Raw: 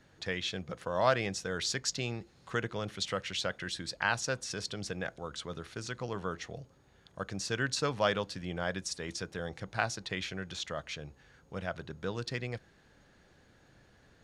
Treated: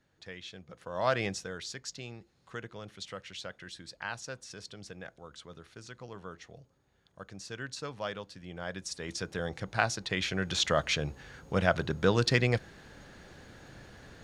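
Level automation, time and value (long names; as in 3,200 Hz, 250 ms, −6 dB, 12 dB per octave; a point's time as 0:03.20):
0:00.68 −10 dB
0:01.25 +2 dB
0:01.65 −8 dB
0:08.36 −8 dB
0:09.33 +3.5 dB
0:10.08 +3.5 dB
0:10.68 +11 dB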